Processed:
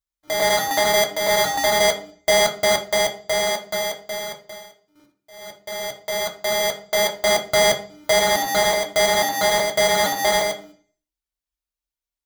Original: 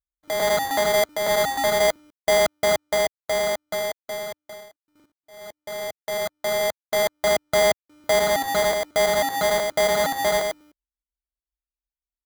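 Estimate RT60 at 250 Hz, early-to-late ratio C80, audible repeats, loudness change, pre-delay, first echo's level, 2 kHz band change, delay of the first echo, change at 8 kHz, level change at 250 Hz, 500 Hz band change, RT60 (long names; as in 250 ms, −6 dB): 0.60 s, 16.0 dB, no echo audible, +3.0 dB, 3 ms, no echo audible, +4.0 dB, no echo audible, +6.0 dB, +2.5 dB, +0.5 dB, 0.45 s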